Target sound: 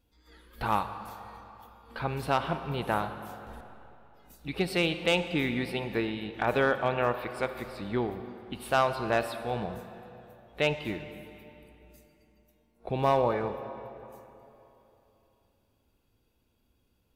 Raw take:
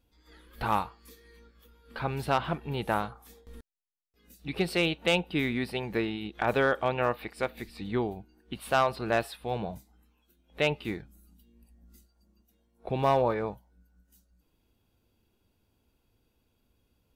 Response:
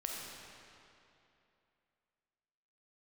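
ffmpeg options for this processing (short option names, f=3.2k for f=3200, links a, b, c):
-filter_complex "[0:a]asplit=2[a][b];[b]equalizer=f=1k:w=1.5:g=2[c];[1:a]atrim=start_sample=2205,asetrate=39249,aresample=44100[d];[c][d]afir=irnorm=-1:irlink=0,volume=-7.5dB[e];[a][e]amix=inputs=2:normalize=0,volume=-3dB"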